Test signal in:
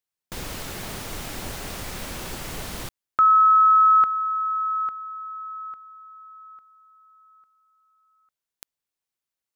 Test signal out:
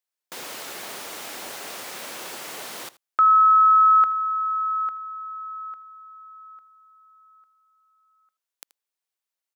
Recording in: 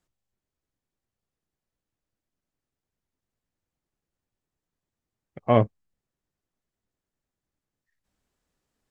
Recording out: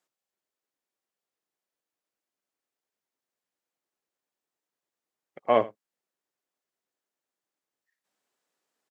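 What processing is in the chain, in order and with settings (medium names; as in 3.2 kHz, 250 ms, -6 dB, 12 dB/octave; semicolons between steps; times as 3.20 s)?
high-pass 410 Hz 12 dB/octave; on a send: delay 80 ms -19 dB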